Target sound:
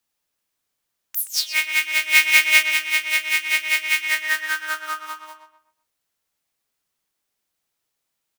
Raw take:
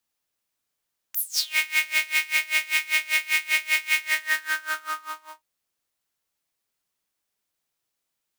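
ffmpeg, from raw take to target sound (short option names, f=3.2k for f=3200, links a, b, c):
-filter_complex "[0:a]asettb=1/sr,asplit=3[a][b][c];[a]atrim=end=2.094[d];[b]atrim=start=2.09:end=2.63,asetpts=PTS-STARTPTS,afade=t=in:d=0.004:c=qsin,afade=t=out:st=0.536:d=0.004:c=qsin,acontrast=87[e];[c]atrim=start=2.626[f];[d][e]acrossfade=d=0.004:c1=hsin:c2=qsin[g];[g][f]acrossfade=d=0.004:c1=qsin:c2=hsin,asplit=2[h][i];[i]adelay=125,lowpass=f=3.1k:p=1,volume=-7dB,asplit=2[j][k];[k]adelay=125,lowpass=f=3.1k:p=1,volume=0.34,asplit=2[l][m];[m]adelay=125,lowpass=f=3.1k:p=1,volume=0.34,asplit=2[n][o];[o]adelay=125,lowpass=f=3.1k:p=1,volume=0.34[p];[j][l][n][p]amix=inputs=4:normalize=0[q];[h][q]amix=inputs=2:normalize=0,volume=2.5dB"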